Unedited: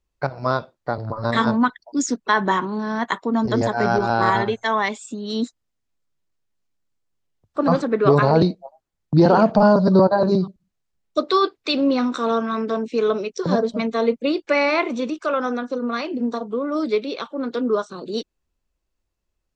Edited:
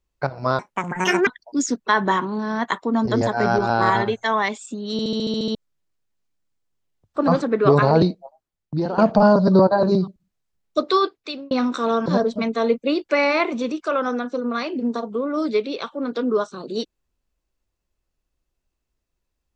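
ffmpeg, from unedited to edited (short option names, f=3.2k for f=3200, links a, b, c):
-filter_complex "[0:a]asplit=15[a][b][c][d][e][f][g][h][i][j][k][l][m][n][o];[a]atrim=end=0.594[p];[b]atrim=start=0.59:end=1.67,asetpts=PTS-STARTPTS,asetrate=70119,aresample=44100[q];[c]atrim=start=1.666:end=5.392[r];[d]atrim=start=5.318:end=5.392[s];[e]atrim=start=5.318:end=5.392[t];[f]atrim=start=5.318:end=5.392[u];[g]atrim=start=5.318:end=5.392[v];[h]atrim=start=5.318:end=5.392[w];[i]atrim=start=5.318:end=5.392[x];[j]atrim=start=5.318:end=5.392[y];[k]atrim=start=5.318:end=5.392[z];[l]atrim=start=5.948:end=9.38,asetpts=PTS-STARTPTS,afade=t=out:st=2.462:d=0.97:silence=0.199526[aa];[m]atrim=start=9.38:end=11.91,asetpts=PTS-STARTPTS,afade=t=in:d=0.004:c=hsin:silence=0.199526,afade=t=out:st=1.97:d=0.56[ab];[n]atrim=start=11.91:end=12.462,asetpts=PTS-STARTPTS,afade=t=in:d=0.004:c=hsin[ac];[o]atrim=start=13.438[ad];[p][q]acrossfade=d=0.004:c1=hsin:c2=hsin[ae];[ae][r]acrossfade=d=0.004:c1=hsin:c2=hsin[af];[af][s]acrossfade=d=0.004:c1=hsin:c2=hsin[ag];[ag][t]acrossfade=d=0.004:c1=hsin:c2=hsin[ah];[ah][u]acrossfade=d=0.004:c1=hsin:c2=hsin[ai];[ai][v]acrossfade=d=0.004:c1=hsin:c2=hsin[aj];[aj][w]acrossfade=d=0.004:c1=hsin:c2=hsin[ak];[ak][x]acrossfade=d=0.004:c1=hsin:c2=hsin[al];[al][y]acrossfade=d=0.004:c1=hsin:c2=hsin[am];[am][z]acrossfade=d=0.004:c1=hsin:c2=hsin[an];[aa][ab][ac]concat=n=3:v=0:a=1[ao];[an][ao]acrossfade=d=0.004:c1=hsin:c2=hsin[ap];[ap][ad]acrossfade=d=0.004:c1=hsin:c2=hsin"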